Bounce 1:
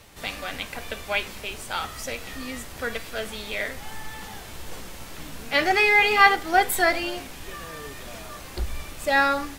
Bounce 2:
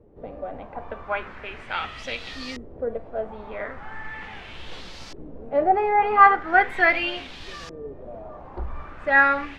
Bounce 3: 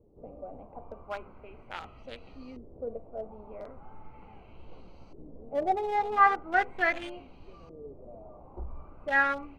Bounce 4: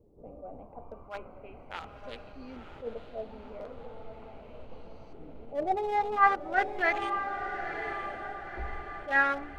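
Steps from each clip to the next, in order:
mains-hum notches 50/100/150/200 Hz; auto-filter low-pass saw up 0.39 Hz 390–5,400 Hz; level −1.5 dB
adaptive Wiener filter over 25 samples; level −7.5 dB
feedback delay with all-pass diffusion 982 ms, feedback 51%, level −8.5 dB; level that may rise only so fast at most 200 dB per second

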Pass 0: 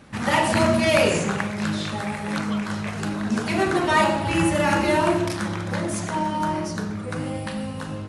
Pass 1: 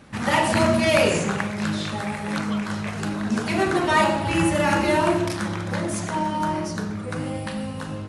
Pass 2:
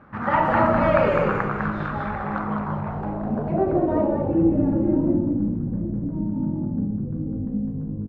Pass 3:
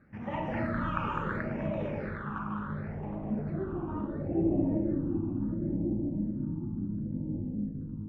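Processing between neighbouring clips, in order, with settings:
no processing that can be heard
echo with shifted repeats 203 ms, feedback 36%, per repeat −58 Hz, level −3 dB; low-pass filter sweep 1,300 Hz → 250 Hz, 0:02.19–0:05.29; level −3 dB
on a send: tape delay 766 ms, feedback 41%, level −3.5 dB, low-pass 1,500 Hz; on the sum: all-pass phaser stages 8, 0.71 Hz, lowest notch 580–1,400 Hz; level −9 dB

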